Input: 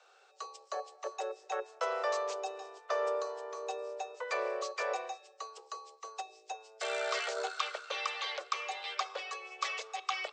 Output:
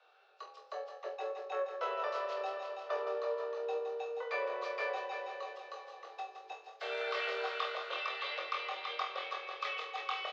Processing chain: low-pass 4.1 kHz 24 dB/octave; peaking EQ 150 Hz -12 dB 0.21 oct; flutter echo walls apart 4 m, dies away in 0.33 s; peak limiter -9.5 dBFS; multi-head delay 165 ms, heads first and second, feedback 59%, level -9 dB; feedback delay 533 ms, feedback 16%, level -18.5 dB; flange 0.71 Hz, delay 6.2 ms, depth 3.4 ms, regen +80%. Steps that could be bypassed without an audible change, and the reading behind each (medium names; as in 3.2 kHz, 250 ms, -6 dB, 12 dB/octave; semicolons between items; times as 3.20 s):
peaking EQ 150 Hz: input has nothing below 320 Hz; peak limiter -9.5 dBFS: peak at its input -18.5 dBFS